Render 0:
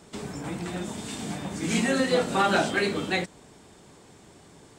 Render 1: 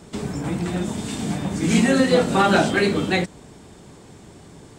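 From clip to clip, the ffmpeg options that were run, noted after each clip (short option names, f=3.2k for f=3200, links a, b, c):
-af "lowshelf=f=320:g=7,volume=4dB"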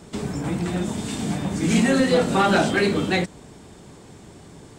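-af "asoftclip=type=tanh:threshold=-9.5dB"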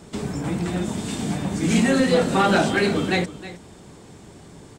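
-af "aecho=1:1:316:0.168"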